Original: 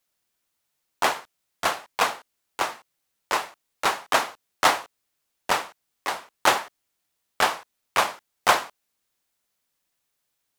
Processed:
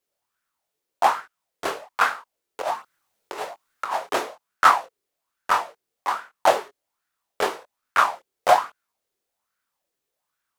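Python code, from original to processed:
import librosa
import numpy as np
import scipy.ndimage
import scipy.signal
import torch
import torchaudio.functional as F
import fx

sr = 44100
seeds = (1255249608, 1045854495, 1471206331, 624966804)

y = fx.chorus_voices(x, sr, voices=2, hz=0.85, base_ms=23, depth_ms=4.3, mix_pct=35)
y = fx.over_compress(y, sr, threshold_db=-34.0, ratio=-1.0, at=(2.6, 4.08), fade=0.02)
y = fx.bell_lfo(y, sr, hz=1.2, low_hz=390.0, high_hz=1500.0, db=16)
y = y * librosa.db_to_amplitude(-3.0)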